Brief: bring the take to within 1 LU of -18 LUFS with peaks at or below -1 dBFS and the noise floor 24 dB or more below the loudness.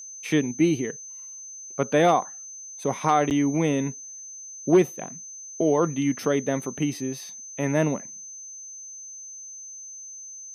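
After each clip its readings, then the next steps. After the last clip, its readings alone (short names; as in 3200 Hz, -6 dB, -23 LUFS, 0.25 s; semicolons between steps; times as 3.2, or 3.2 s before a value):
dropouts 1; longest dropout 8.2 ms; steady tone 6200 Hz; tone level -38 dBFS; loudness -24.5 LUFS; peak -8.0 dBFS; loudness target -18.0 LUFS
-> interpolate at 3.3, 8.2 ms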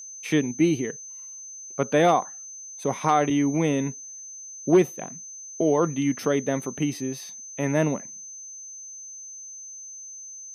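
dropouts 0; steady tone 6200 Hz; tone level -38 dBFS
-> notch 6200 Hz, Q 30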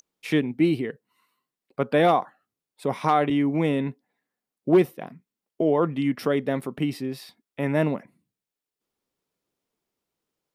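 steady tone none; loudness -24.5 LUFS; peak -8.5 dBFS; loudness target -18.0 LUFS
-> gain +6.5 dB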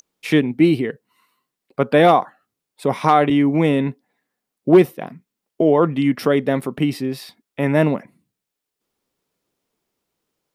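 loudness -18.0 LUFS; peak -2.0 dBFS; noise floor -83 dBFS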